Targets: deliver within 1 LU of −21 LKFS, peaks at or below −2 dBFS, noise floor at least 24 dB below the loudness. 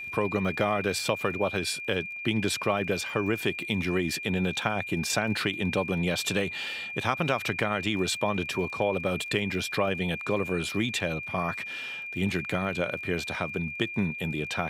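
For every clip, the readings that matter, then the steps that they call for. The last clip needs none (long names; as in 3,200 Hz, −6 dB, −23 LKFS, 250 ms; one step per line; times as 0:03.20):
crackle rate 28 per second; interfering tone 2,400 Hz; level of the tone −35 dBFS; integrated loudness −28.5 LKFS; sample peak −8.5 dBFS; target loudness −21.0 LKFS
→ click removal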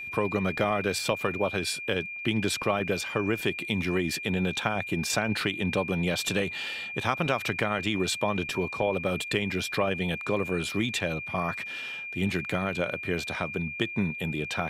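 crackle rate 0 per second; interfering tone 2,400 Hz; level of the tone −35 dBFS
→ notch filter 2,400 Hz, Q 30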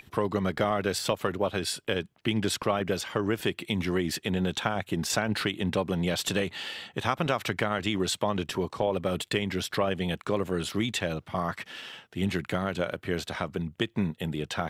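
interfering tone none found; integrated loudness −29.5 LKFS; sample peak −9.0 dBFS; target loudness −21.0 LKFS
→ level +8.5 dB
brickwall limiter −2 dBFS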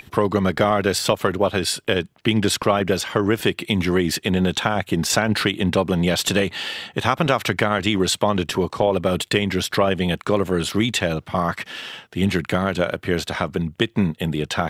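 integrated loudness −21.0 LKFS; sample peak −2.0 dBFS; background noise floor −56 dBFS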